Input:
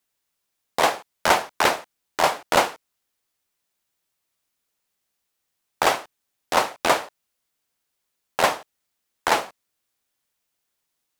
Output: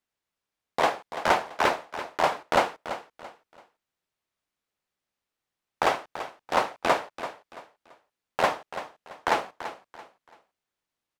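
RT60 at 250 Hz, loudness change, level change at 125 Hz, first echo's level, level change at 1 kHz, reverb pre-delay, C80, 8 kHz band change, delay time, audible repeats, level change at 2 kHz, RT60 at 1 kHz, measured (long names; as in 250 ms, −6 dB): no reverb audible, −5.0 dB, −3.0 dB, −12.0 dB, −3.0 dB, no reverb audible, no reverb audible, −11.5 dB, 336 ms, 3, −4.5 dB, no reverb audible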